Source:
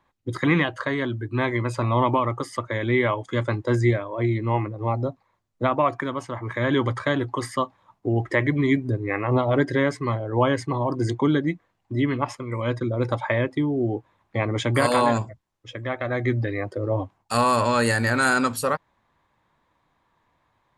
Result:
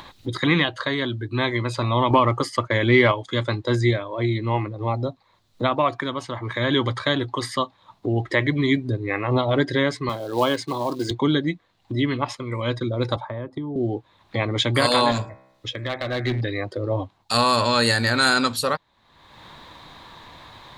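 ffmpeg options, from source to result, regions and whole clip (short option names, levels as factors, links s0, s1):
-filter_complex "[0:a]asettb=1/sr,asplit=3[s0][s1][s2];[s0]atrim=end=2.104[s3];[s1]atrim=start=2.1:end=3.12,asetpts=PTS-STARTPTS,afade=t=in:d=0.004:c=qsin,afade=t=out:st=1.016:d=0.004:c=qsin,acontrast=29,agate=range=0.0224:threshold=0.0251:ratio=3:release=100:detection=peak,bandreject=f=3700:w=5.7[s4];[s2]atrim=start=3.116[s5];[s3][s4]acrossfade=d=0.004:c1=hsin:c2=qsin[s6];[s6][s5]acrossfade=d=0.004:c1=qsin:c2=hsin,asettb=1/sr,asplit=3[s7][s8][s9];[s7]atrim=end=10.094[s10];[s8]atrim=start=10.09:end=11.11,asetpts=PTS-STARTPTS,afade=t=in:d=0.004:c=qsin,afade=t=out:st=1.016:d=0.004:c=qsin,highpass=200,bandreject=f=1900:w=7.3,acrusher=bits=6:mode=log:mix=0:aa=0.000001[s11];[s9]atrim=start=11.106[s12];[s10][s11]acrossfade=d=0.004:c1=hsin:c2=qsin[s13];[s13][s12]acrossfade=d=0.004:c1=qsin:c2=hsin,asettb=1/sr,asplit=3[s14][s15][s16];[s14]atrim=end=13.164[s17];[s15]atrim=start=13.16:end=13.76,asetpts=PTS-STARTPTS,afade=t=in:d=0.004:c=qsin,afade=t=out:st=0.596:d=0.004:c=qsin,highshelf=f=1700:t=q:w=1.5:g=-13,acrossover=split=240|2400[s18][s19][s20];[s18]acompressor=threshold=0.0178:ratio=4[s21];[s19]acompressor=threshold=0.0178:ratio=4[s22];[s20]acompressor=threshold=0.00158:ratio=4[s23];[s21][s22][s23]amix=inputs=3:normalize=0[s24];[s16]atrim=start=13.756[s25];[s17][s24]acrossfade=d=0.004:c1=hsin:c2=qsin[s26];[s26][s25]acrossfade=d=0.004:c1=qsin:c2=hsin,asettb=1/sr,asplit=3[s27][s28][s29];[s27]atrim=end=15.114[s30];[s28]atrim=start=15.11:end=16.41,asetpts=PTS-STARTPTS,afade=t=in:d=0.004:c=qsin,afade=t=out:st=1.296:d=0.004:c=qsin,bandreject=f=65.05:t=h:w=4,bandreject=f=130.1:t=h:w=4,bandreject=f=195.15:t=h:w=4,bandreject=f=260.2:t=h:w=4,bandreject=f=325.25:t=h:w=4,bandreject=f=390.3:t=h:w=4,bandreject=f=455.35:t=h:w=4,bandreject=f=520.4:t=h:w=4,bandreject=f=585.45:t=h:w=4,bandreject=f=650.5:t=h:w=4,bandreject=f=715.55:t=h:w=4,bandreject=f=780.6:t=h:w=4,bandreject=f=845.65:t=h:w=4,bandreject=f=910.7:t=h:w=4,bandreject=f=975.75:t=h:w=4,bandreject=f=1040.8:t=h:w=4,bandreject=f=1105.85:t=h:w=4,bandreject=f=1170.9:t=h:w=4,bandreject=f=1235.95:t=h:w=4,bandreject=f=1301:t=h:w=4,bandreject=f=1366.05:t=h:w=4,bandreject=f=1431.1:t=h:w=4,bandreject=f=1496.15:t=h:w=4,bandreject=f=1561.2:t=h:w=4,bandreject=f=1626.25:t=h:w=4,bandreject=f=1691.3:t=h:w=4,bandreject=f=1756.35:t=h:w=4,bandreject=f=1821.4:t=h:w=4,bandreject=f=1886.45:t=h:w=4,bandreject=f=1951.5:t=h:w=4,bandreject=f=2016.55:t=h:w=4,bandreject=f=2081.6:t=h:w=4,bandreject=f=2146.65:t=h:w=4,bandreject=f=2211.7:t=h:w=4,bandreject=f=2276.75:t=h:w=4,bandreject=f=2341.8:t=h:w=4,bandreject=f=2406.85:t=h:w=4,bandreject=f=2471.9:t=h:w=4,bandreject=f=2536.95:t=h:w=4,aeval=exprs='clip(val(0),-1,0.0891)':c=same[s31];[s29]atrim=start=16.406[s32];[s30][s31]acrossfade=d=0.004:c1=hsin:c2=qsin[s33];[s33][s32]acrossfade=d=0.004:c1=qsin:c2=hsin,equalizer=f=3900:t=o:w=0.68:g=13.5,acompressor=mode=upward:threshold=0.0562:ratio=2.5"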